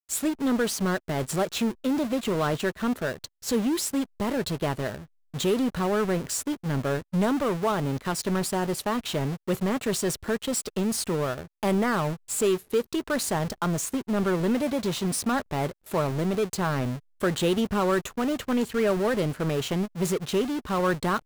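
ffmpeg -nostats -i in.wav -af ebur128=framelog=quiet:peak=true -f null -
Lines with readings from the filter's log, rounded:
Integrated loudness:
  I:         -27.0 LUFS
  Threshold: -37.1 LUFS
Loudness range:
  LRA:         1.7 LU
  Threshold: -47.1 LUFS
  LRA low:   -27.9 LUFS
  LRA high:  -26.3 LUFS
True peak:
  Peak:      -14.7 dBFS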